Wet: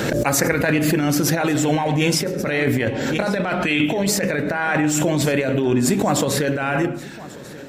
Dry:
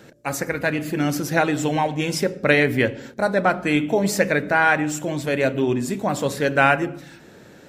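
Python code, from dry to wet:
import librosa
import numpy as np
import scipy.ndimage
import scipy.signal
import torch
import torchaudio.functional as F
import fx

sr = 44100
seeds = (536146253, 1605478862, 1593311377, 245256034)

y = fx.peak_eq(x, sr, hz=2900.0, db=11.0, octaves=0.94, at=(3.12, 4.07))
y = fx.over_compress(y, sr, threshold_db=-22.0, ratio=-0.5)
y = y + 10.0 ** (-19.0 / 20.0) * np.pad(y, (int(1140 * sr / 1000.0), 0))[:len(y)]
y = fx.pre_swell(y, sr, db_per_s=22.0)
y = y * 10.0 ** (2.5 / 20.0)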